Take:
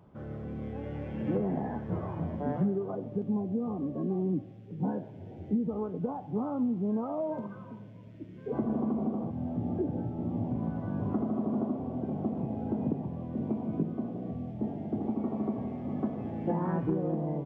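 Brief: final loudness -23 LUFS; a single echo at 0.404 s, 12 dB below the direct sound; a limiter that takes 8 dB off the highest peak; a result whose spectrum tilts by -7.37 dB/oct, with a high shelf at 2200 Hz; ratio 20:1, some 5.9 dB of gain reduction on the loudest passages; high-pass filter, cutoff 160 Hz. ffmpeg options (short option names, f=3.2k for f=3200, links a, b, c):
-af "highpass=160,highshelf=f=2.2k:g=5,acompressor=threshold=-32dB:ratio=20,alimiter=level_in=7.5dB:limit=-24dB:level=0:latency=1,volume=-7.5dB,aecho=1:1:404:0.251,volume=17dB"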